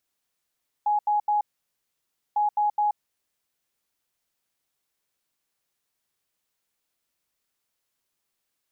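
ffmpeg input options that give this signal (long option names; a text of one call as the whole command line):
ffmpeg -f lavfi -i "aevalsrc='0.106*sin(2*PI*835*t)*clip(min(mod(mod(t,1.5),0.21),0.13-mod(mod(t,1.5),0.21))/0.005,0,1)*lt(mod(t,1.5),0.63)':duration=3:sample_rate=44100" out.wav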